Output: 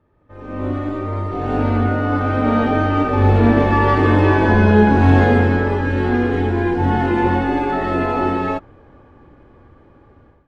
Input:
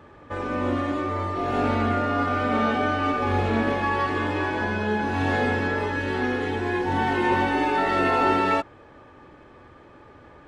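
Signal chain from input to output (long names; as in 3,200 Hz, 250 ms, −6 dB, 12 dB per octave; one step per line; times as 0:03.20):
source passing by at 0:04.68, 10 m/s, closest 5.6 metres
spectral tilt −2.5 dB per octave
automatic gain control gain up to 16 dB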